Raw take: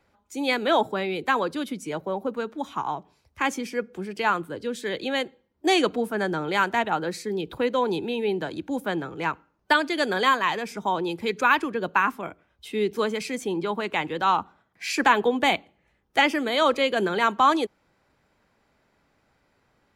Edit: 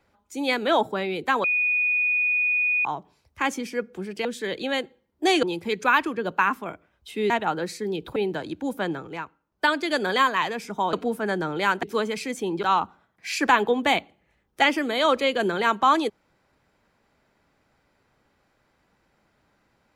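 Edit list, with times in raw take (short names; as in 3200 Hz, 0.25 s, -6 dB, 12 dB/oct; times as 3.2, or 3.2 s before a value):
1.44–2.85 bleep 2470 Hz -19.5 dBFS
4.25–4.67 cut
5.85–6.75 swap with 11–12.87
7.61–8.23 cut
8.96–9.88 dip -8 dB, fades 0.32 s equal-power
13.67–14.2 cut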